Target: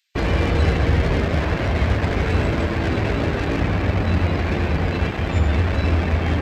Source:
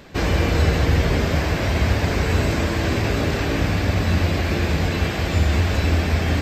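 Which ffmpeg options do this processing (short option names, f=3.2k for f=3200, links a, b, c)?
-filter_complex "[0:a]afftdn=nr=17:nf=-28,acrossover=split=2300[a][b];[a]acrusher=bits=3:mix=0:aa=0.5[c];[c][b]amix=inputs=2:normalize=0"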